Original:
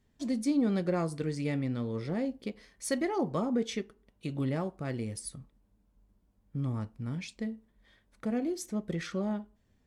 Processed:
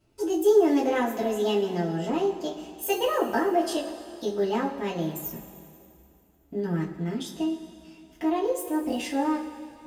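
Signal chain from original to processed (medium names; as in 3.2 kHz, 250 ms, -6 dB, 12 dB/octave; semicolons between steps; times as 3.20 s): pitch shift +6.5 st; two-slope reverb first 0.2 s, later 2.5 s, from -18 dB, DRR -5 dB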